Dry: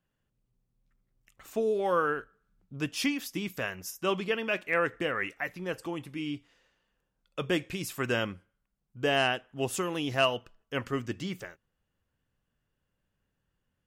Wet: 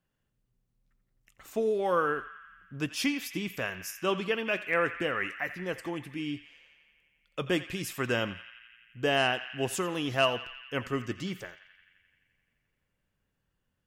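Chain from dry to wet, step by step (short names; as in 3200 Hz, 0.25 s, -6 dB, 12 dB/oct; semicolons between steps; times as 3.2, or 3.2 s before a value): narrowing echo 86 ms, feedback 80%, band-pass 2200 Hz, level -12 dB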